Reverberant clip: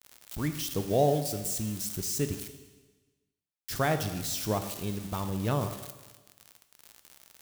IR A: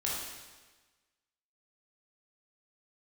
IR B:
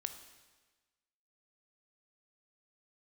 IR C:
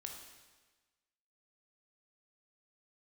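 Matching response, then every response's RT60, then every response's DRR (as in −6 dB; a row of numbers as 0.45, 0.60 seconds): B; 1.3, 1.3, 1.3 seconds; −5.5, 8.0, 1.5 decibels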